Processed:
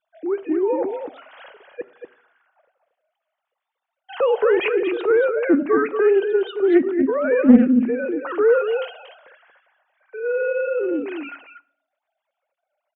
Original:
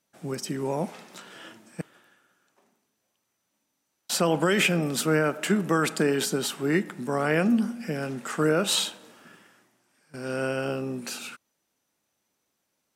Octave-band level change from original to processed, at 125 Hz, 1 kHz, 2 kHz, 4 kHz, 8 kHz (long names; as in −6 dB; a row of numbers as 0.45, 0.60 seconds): below −10 dB, +2.5 dB, +1.5 dB, −9.5 dB, below −40 dB